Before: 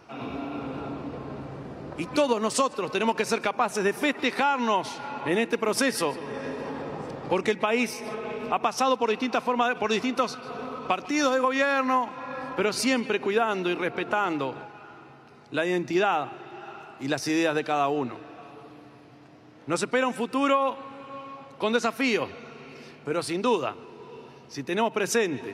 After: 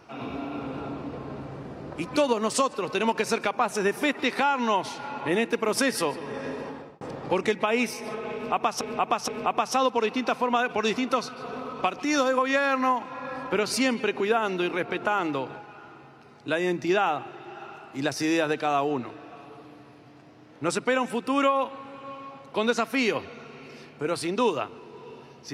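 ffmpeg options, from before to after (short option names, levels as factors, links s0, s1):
-filter_complex "[0:a]asplit=4[s0][s1][s2][s3];[s0]atrim=end=7.01,asetpts=PTS-STARTPTS,afade=t=out:st=6.57:d=0.44[s4];[s1]atrim=start=7.01:end=8.812,asetpts=PTS-STARTPTS,afade=t=in:d=0.004:c=hsin[s5];[s2]atrim=start=8.338:end=8.812[s6];[s3]atrim=start=8.338[s7];[s4][s5]concat=n=2:v=0:a=1[s8];[s8][s6]acrossfade=d=0.004:c1=hsin:c2=hsin[s9];[s9][s7]acrossfade=d=0.004:c1=hsin:c2=hsin"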